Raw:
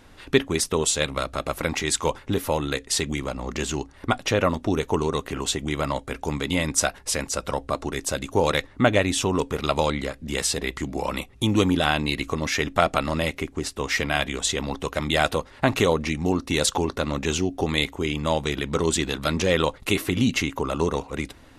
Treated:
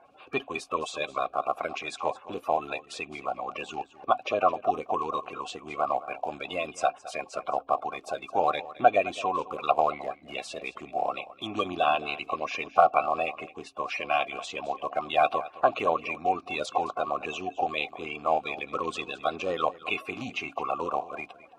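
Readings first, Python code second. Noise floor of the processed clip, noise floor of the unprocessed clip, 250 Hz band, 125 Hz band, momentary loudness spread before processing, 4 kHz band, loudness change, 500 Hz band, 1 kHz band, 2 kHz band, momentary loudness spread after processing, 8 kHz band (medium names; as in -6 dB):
-55 dBFS, -49 dBFS, -14.5 dB, -21.0 dB, 7 LU, -11.5 dB, -5.0 dB, -4.5 dB, +3.0 dB, -6.5 dB, 11 LU, -20.5 dB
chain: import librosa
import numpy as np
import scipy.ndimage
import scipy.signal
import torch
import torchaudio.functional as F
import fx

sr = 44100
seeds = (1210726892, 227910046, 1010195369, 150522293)

y = fx.spec_quant(x, sr, step_db=30)
y = fx.vowel_filter(y, sr, vowel='a')
y = y + 10.0 ** (-17.0 / 20.0) * np.pad(y, (int(215 * sr / 1000.0), 0))[:len(y)]
y = F.gain(torch.from_numpy(y), 8.5).numpy()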